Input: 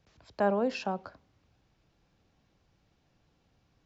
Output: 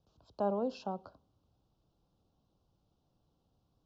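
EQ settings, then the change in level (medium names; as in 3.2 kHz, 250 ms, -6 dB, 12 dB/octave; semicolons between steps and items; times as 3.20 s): Butterworth band-stop 2 kHz, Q 1; distance through air 84 m; -5.0 dB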